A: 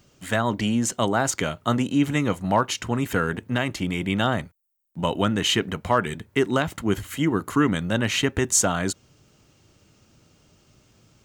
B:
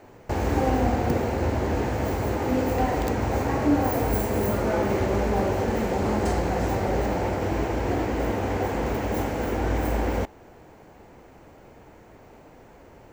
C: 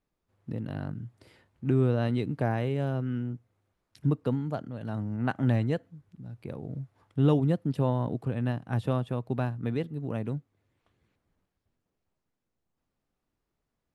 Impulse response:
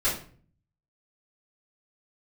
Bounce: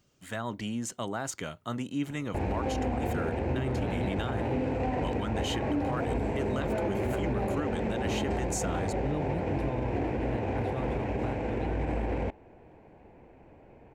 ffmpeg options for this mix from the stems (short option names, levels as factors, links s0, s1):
-filter_complex "[0:a]volume=0.282[s0];[1:a]equalizer=f=1250:t=o:w=0.33:g=-9,equalizer=f=2500:t=o:w=0.33:g=8,equalizer=f=8000:t=o:w=0.33:g=9,adynamicsmooth=sensitivity=1:basefreq=2000,adelay=2050,volume=0.631[s1];[2:a]adelay=1850,volume=0.447[s2];[s0][s1][s2]amix=inputs=3:normalize=0,alimiter=limit=0.0841:level=0:latency=1:release=46"